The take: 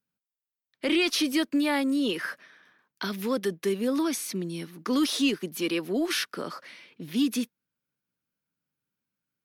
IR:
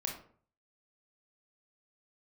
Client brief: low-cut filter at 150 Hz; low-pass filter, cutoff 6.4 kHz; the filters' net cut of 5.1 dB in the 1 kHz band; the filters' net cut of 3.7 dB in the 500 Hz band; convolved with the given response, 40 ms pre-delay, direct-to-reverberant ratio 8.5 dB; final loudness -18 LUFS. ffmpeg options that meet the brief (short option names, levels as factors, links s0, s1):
-filter_complex "[0:a]highpass=150,lowpass=6400,equalizer=f=500:t=o:g=-4,equalizer=f=1000:t=o:g=-5.5,asplit=2[s0][s1];[1:a]atrim=start_sample=2205,adelay=40[s2];[s1][s2]afir=irnorm=-1:irlink=0,volume=0.316[s3];[s0][s3]amix=inputs=2:normalize=0,volume=3.55"